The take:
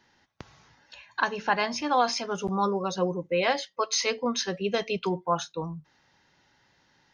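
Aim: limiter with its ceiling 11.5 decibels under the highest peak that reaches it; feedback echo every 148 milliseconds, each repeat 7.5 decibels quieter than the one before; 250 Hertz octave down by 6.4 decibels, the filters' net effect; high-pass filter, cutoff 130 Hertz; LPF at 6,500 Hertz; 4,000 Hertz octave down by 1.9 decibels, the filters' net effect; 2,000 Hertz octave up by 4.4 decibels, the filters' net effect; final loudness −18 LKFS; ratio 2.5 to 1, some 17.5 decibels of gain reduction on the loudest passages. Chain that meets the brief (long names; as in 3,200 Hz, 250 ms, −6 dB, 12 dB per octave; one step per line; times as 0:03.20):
high-pass filter 130 Hz
low-pass filter 6,500 Hz
parametric band 250 Hz −9 dB
parametric band 2,000 Hz +6.5 dB
parametric band 4,000 Hz −3.5 dB
downward compressor 2.5 to 1, threshold −45 dBFS
brickwall limiter −35.5 dBFS
repeating echo 148 ms, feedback 42%, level −7.5 dB
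level +27.5 dB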